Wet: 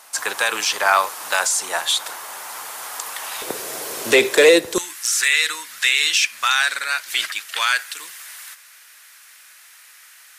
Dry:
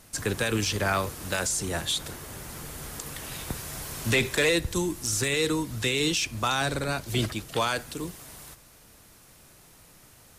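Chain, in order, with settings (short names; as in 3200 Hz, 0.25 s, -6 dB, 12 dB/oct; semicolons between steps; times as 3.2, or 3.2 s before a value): resonant high-pass 890 Hz, resonance Q 2, from 3.42 s 430 Hz, from 4.78 s 1700 Hz; gain +8 dB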